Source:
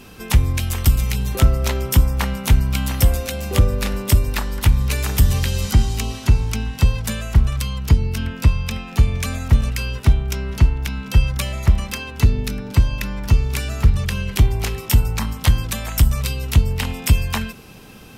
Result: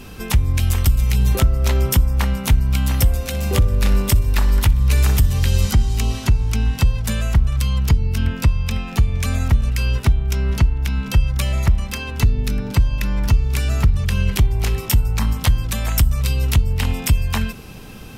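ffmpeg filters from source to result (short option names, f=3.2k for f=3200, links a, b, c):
-filter_complex "[0:a]asettb=1/sr,asplit=3[a][b][c];[a]atrim=end=3.154[d];[b]atrim=start=3.15:end=5.37,asetpts=PTS-STARTPTS,afade=t=in:d=0.004:c=qsin,afade=t=out:st=2.216:d=0.004:c=qsin,aecho=1:1:62|124|186|248|310:0.158|0.0824|0.0429|0.0223|0.0116,atrim=end_sample=97902[e];[c]atrim=start=5.366[f];[d][e]acrossfade=d=0.004:c1=hsin:c2=qsin[g];[g][f]acrossfade=d=0.004:c1=qsin:c2=hsin,lowshelf=f=100:g=8.5,alimiter=limit=-9dB:level=0:latency=1:release=410,volume=2.5dB"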